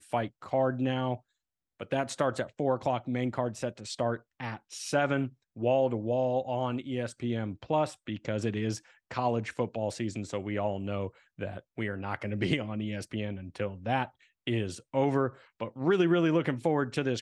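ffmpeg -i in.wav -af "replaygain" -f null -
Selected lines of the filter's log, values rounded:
track_gain = +10.5 dB
track_peak = 0.190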